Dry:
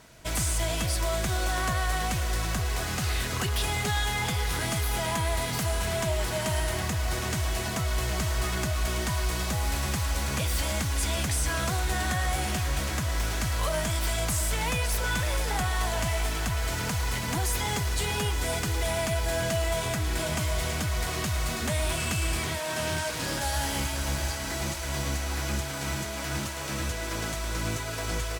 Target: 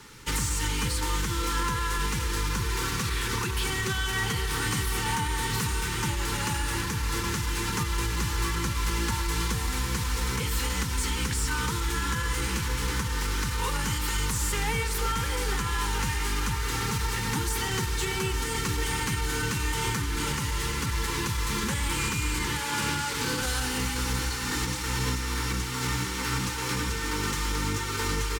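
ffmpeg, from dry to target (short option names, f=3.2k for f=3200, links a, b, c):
-filter_complex "[0:a]aecho=1:1:94|188|282|376:0.119|0.0606|0.0309|0.0158,acrossover=split=120|1900[a][b][c];[c]asoftclip=type=tanh:threshold=-29.5dB[d];[a][b][d]amix=inputs=3:normalize=0,asuperstop=centerf=710:order=8:qfactor=2.2,bandreject=f=50:t=h:w=6,bandreject=f=100:t=h:w=6,bandreject=f=150:t=h:w=6,bandreject=f=200:t=h:w=6,bandreject=f=250:t=h:w=6,bandreject=f=300:t=h:w=6,bandreject=f=350:t=h:w=6,alimiter=limit=-23.5dB:level=0:latency=1:release=386,equalizer=f=84:t=o:w=0.3:g=-9.5,asetrate=40440,aresample=44100,atempo=1.09051,volume=6dB"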